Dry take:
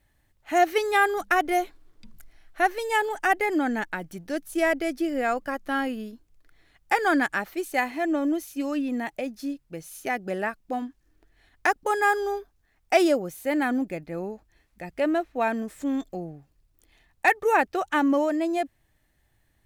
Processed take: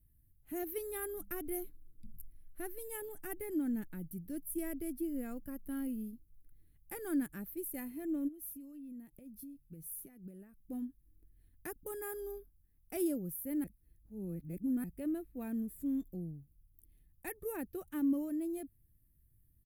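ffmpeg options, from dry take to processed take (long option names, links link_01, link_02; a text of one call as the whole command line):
ffmpeg -i in.wav -filter_complex "[0:a]asplit=3[link_01][link_02][link_03];[link_01]afade=type=out:start_time=8.27:duration=0.02[link_04];[link_02]acompressor=threshold=-38dB:ratio=8:attack=3.2:release=140:knee=1:detection=peak,afade=type=in:start_time=8.27:duration=0.02,afade=type=out:start_time=10.58:duration=0.02[link_05];[link_03]afade=type=in:start_time=10.58:duration=0.02[link_06];[link_04][link_05][link_06]amix=inputs=3:normalize=0,asplit=3[link_07][link_08][link_09];[link_07]atrim=end=13.642[link_10];[link_08]atrim=start=13.638:end=14.842,asetpts=PTS-STARTPTS,areverse[link_11];[link_09]atrim=start=14.838[link_12];[link_10][link_11]acrossfade=duration=0.004:curve1=hsin:curve2=hsin[link_13];[link_13][link_12]acrossfade=duration=0.004:curve1=hsin:curve2=hsin,firequalizer=gain_entry='entry(110,0);entry(730,-30);entry(1200,-27);entry(6500,-23);entry(11000,3)':delay=0.05:min_phase=1" out.wav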